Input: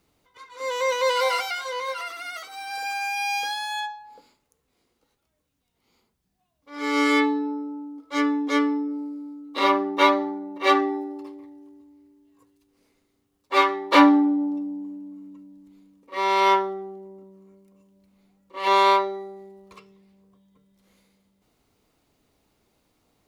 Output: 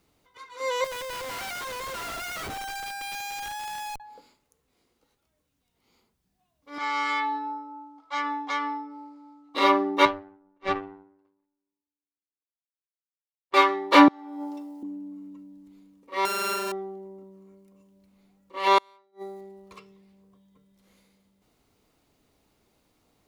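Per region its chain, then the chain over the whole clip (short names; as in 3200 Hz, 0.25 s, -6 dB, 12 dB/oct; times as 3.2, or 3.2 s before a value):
0.84–4 HPF 610 Hz 6 dB/oct + compressor 4:1, threshold -31 dBFS + Schmitt trigger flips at -40.5 dBFS
6.78–9.55 LPF 6000 Hz + resonant low shelf 580 Hz -10.5 dB, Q 3 + compressor 3:1, threshold -25 dBFS
10.05–13.54 power-law curve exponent 2 + tape spacing loss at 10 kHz 23 dB
14.08–14.83 high shelf 2800 Hz +8.5 dB + negative-ratio compressor -24 dBFS, ratio -0.5 + HPF 610 Hz
16.25–16.72 sample sorter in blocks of 32 samples + compressor 5:1, threshold -26 dBFS
18.78–19.41 high shelf 5700 Hz +10.5 dB + flipped gate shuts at -22 dBFS, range -39 dB
whole clip: dry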